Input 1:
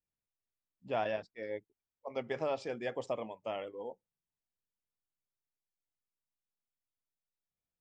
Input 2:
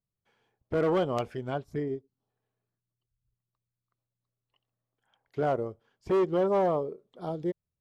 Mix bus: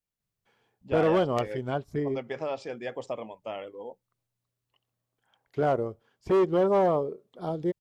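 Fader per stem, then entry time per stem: +2.0 dB, +2.5 dB; 0.00 s, 0.20 s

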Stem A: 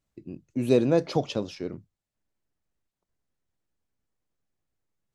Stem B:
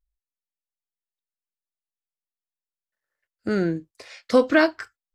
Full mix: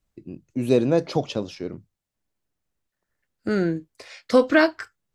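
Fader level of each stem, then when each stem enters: +2.0 dB, +0.5 dB; 0.00 s, 0.00 s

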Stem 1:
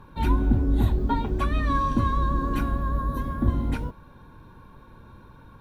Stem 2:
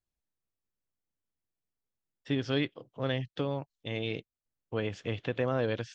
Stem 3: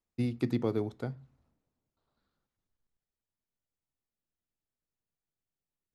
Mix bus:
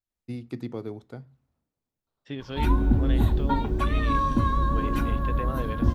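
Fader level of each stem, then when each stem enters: 0.0 dB, -5.0 dB, -4.0 dB; 2.40 s, 0.00 s, 0.10 s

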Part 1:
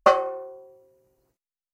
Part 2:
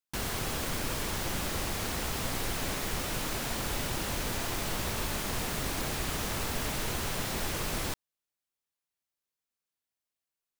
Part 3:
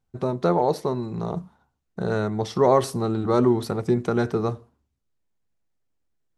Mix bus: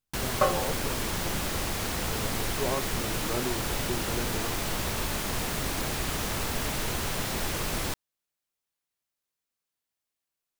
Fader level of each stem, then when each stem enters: -7.5 dB, +2.5 dB, -14.0 dB; 0.35 s, 0.00 s, 0.00 s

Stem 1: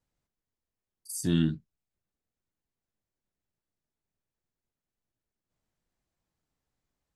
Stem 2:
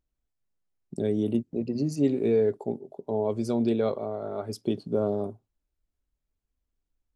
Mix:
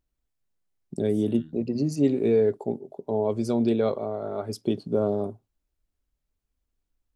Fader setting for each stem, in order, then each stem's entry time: -20.0 dB, +2.0 dB; 0.00 s, 0.00 s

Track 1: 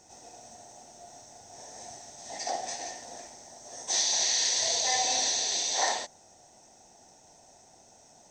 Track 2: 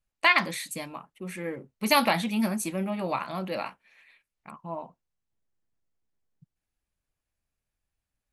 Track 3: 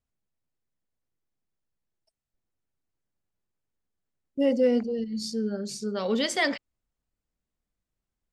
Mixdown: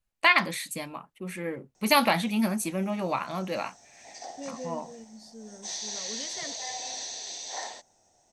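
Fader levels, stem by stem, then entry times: -9.0 dB, +0.5 dB, -16.5 dB; 1.75 s, 0.00 s, 0.00 s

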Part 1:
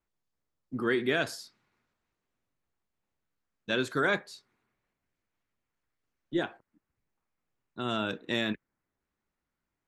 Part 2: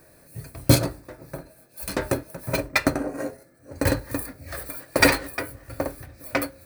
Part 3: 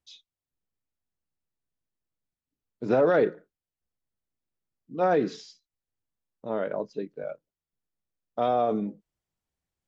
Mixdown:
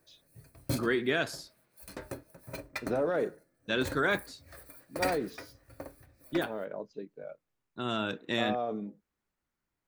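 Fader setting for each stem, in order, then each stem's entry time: -1.0 dB, -16.5 dB, -8.5 dB; 0.00 s, 0.00 s, 0.00 s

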